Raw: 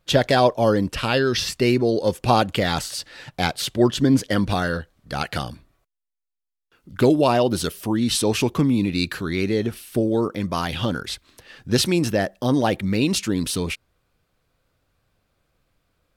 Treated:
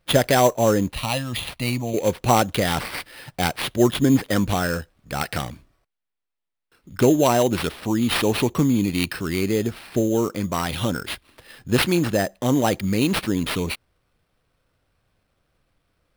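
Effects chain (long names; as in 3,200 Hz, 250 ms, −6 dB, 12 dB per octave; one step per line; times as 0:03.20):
0:00.92–0:01.94: phaser with its sweep stopped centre 1,500 Hz, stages 6
sample-rate reduction 6,800 Hz, jitter 0%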